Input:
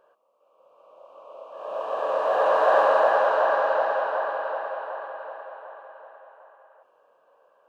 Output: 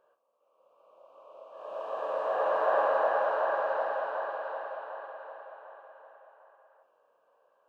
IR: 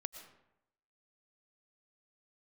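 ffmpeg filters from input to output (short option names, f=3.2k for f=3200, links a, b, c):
-filter_complex "[0:a]asplit=2[a][b];[1:a]atrim=start_sample=2205,adelay=48[c];[b][c]afir=irnorm=-1:irlink=0,volume=-9dB[d];[a][d]amix=inputs=2:normalize=0,acrossover=split=2800[e][f];[f]acompressor=threshold=-52dB:ratio=4:attack=1:release=60[g];[e][g]amix=inputs=2:normalize=0,volume=-7.5dB"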